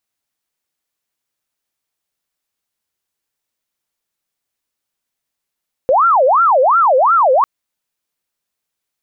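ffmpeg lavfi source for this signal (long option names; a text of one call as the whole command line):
ffmpeg -f lavfi -i "aevalsrc='0.398*sin(2*PI*(943*t-437/(2*PI*2.8)*sin(2*PI*2.8*t)))':duration=1.55:sample_rate=44100" out.wav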